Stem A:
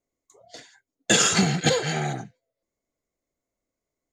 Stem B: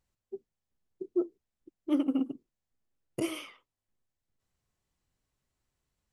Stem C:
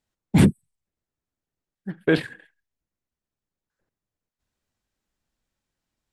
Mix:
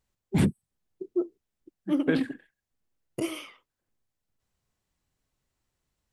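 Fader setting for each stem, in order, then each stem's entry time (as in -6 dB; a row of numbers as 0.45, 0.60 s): off, +1.5 dB, -7.5 dB; off, 0.00 s, 0.00 s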